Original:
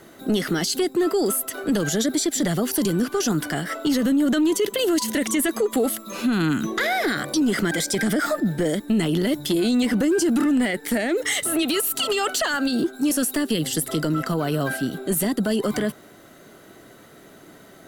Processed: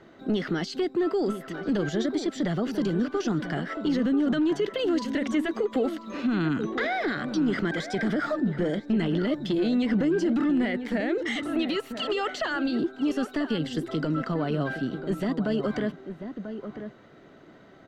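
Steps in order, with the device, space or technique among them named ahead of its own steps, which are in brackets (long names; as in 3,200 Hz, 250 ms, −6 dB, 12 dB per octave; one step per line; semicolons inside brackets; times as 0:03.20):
shout across a valley (high-frequency loss of the air 200 metres; slap from a distant wall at 170 metres, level −9 dB)
level −4 dB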